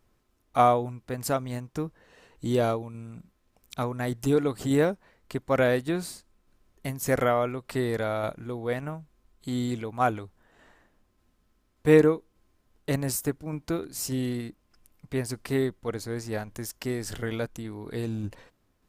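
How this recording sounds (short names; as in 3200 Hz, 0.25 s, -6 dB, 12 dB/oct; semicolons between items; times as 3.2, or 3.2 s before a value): tremolo saw down 1.7 Hz, depth 30%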